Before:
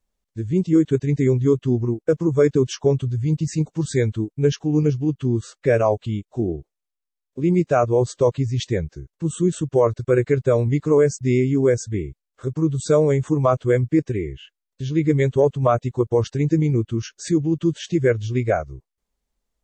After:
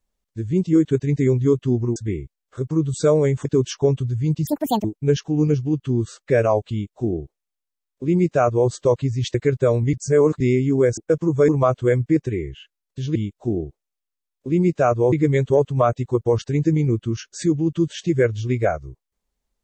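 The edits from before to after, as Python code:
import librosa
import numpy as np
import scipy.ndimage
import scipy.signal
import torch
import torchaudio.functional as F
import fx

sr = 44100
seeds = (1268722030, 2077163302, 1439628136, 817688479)

y = fx.edit(x, sr, fx.swap(start_s=1.96, length_s=0.51, other_s=11.82, other_length_s=1.49),
    fx.speed_span(start_s=3.49, length_s=0.71, speed=1.9),
    fx.duplicate(start_s=6.07, length_s=1.97, to_s=14.98),
    fx.cut(start_s=8.7, length_s=1.49),
    fx.reverse_span(start_s=10.78, length_s=0.47), tone=tone)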